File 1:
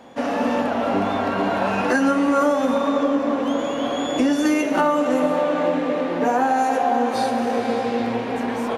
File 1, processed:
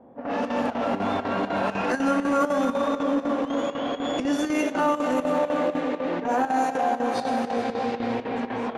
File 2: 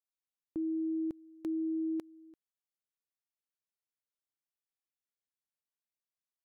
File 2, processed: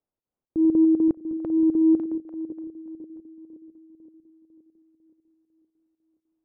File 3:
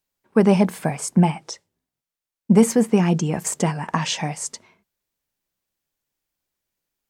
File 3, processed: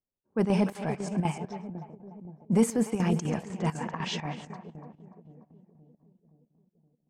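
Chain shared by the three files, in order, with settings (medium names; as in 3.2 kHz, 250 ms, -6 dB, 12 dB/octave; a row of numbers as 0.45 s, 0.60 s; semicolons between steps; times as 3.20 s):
chunks repeated in reverse 121 ms, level -14 dB; on a send: two-band feedback delay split 550 Hz, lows 521 ms, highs 293 ms, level -12 dB; on the sum: square tremolo 4 Hz, depth 65%, duty 80%; transient shaper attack -8 dB, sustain -2 dB; level-controlled noise filter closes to 610 Hz, open at -17.5 dBFS; peak normalisation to -12 dBFS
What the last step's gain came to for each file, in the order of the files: -2.5 dB, +17.5 dB, -6.0 dB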